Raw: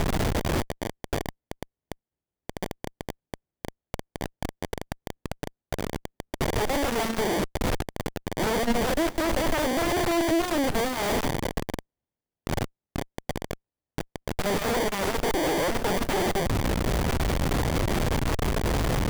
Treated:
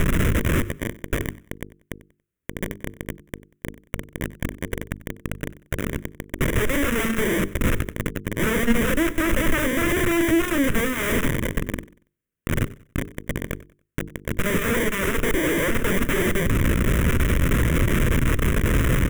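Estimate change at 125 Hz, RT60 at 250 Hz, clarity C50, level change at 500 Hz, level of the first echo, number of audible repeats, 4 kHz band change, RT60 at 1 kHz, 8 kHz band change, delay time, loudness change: +6.5 dB, none, none, +1.5 dB, -19.5 dB, 2, 0.0 dB, none, +3.0 dB, 94 ms, +4.0 dB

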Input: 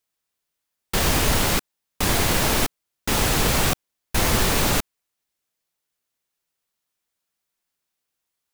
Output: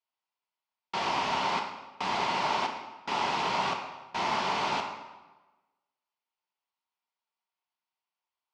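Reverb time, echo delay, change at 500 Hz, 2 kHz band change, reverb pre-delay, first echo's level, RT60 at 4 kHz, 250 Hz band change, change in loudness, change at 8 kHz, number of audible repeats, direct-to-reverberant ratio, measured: 1.2 s, none, -9.0 dB, -8.0 dB, 3 ms, none, 0.90 s, -14.0 dB, -9.0 dB, -22.0 dB, none, 2.5 dB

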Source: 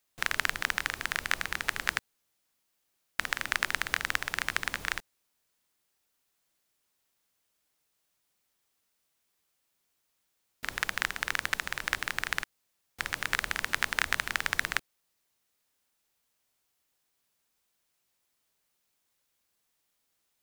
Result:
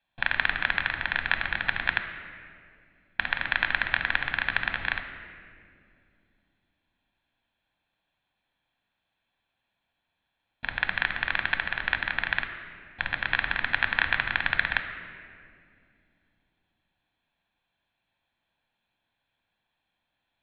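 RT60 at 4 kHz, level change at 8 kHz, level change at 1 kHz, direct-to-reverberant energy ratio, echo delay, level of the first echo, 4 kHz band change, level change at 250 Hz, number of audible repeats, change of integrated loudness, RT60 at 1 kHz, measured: 1.4 s, under -40 dB, +2.5 dB, 7.0 dB, none, none, +1.5 dB, +4.0 dB, none, +4.0 dB, 2.0 s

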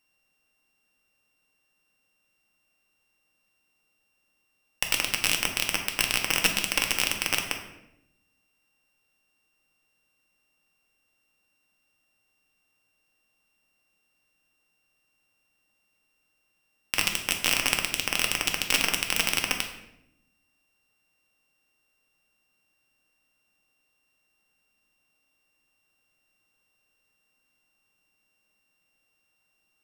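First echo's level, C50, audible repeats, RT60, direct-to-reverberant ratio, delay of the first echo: none, 7.0 dB, none, 0.80 s, 3.0 dB, none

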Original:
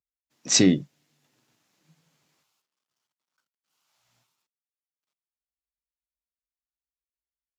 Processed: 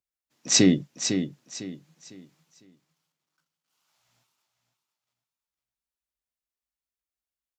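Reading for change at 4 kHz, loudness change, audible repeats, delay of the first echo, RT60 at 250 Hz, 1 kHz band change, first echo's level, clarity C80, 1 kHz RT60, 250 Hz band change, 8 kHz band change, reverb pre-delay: +0.5 dB, -2.0 dB, 3, 0.503 s, none, +0.5 dB, -8.0 dB, none, none, +0.5 dB, +0.5 dB, none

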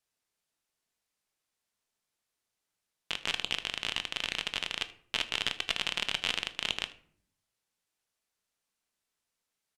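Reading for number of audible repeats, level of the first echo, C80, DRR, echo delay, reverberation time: 1, -21.0 dB, 19.0 dB, 10.0 dB, 78 ms, 0.55 s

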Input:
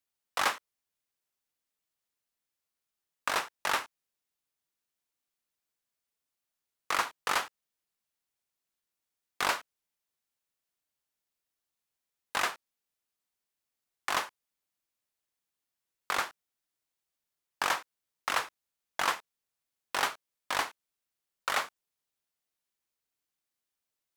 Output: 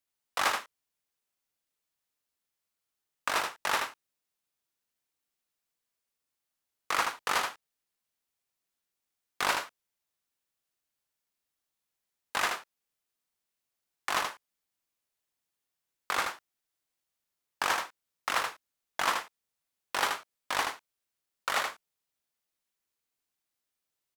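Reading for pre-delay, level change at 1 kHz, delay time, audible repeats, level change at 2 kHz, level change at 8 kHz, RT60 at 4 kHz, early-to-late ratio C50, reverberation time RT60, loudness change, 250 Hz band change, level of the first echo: none, +1.0 dB, 78 ms, 1, +1.0 dB, +1.0 dB, none, none, none, +1.0 dB, +1.0 dB, -5.0 dB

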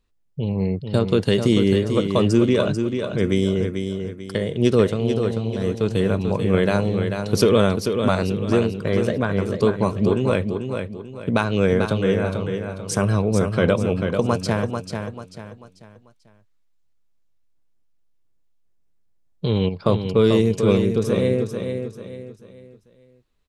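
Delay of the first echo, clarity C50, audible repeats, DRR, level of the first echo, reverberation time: 0.441 s, none, 4, none, -6.5 dB, none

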